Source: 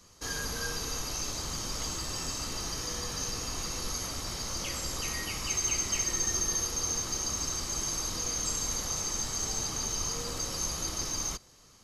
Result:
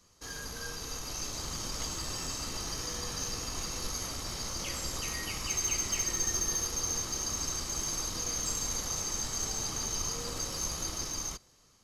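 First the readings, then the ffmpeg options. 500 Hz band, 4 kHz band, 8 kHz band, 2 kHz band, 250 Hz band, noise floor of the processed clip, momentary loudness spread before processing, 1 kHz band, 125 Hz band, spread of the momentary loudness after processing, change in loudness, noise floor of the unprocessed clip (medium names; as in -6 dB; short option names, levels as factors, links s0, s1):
-2.0 dB, -1.5 dB, -1.5 dB, -2.5 dB, -1.5 dB, -63 dBFS, 6 LU, -1.5 dB, -1.5 dB, 7 LU, -1.5 dB, -57 dBFS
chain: -af "aeval=exprs='0.15*(cos(1*acos(clip(val(0)/0.15,-1,1)))-cos(1*PI/2))+0.00668*(cos(6*acos(clip(val(0)/0.15,-1,1)))-cos(6*PI/2))':c=same,dynaudnorm=f=310:g=7:m=1.78,volume=0.473"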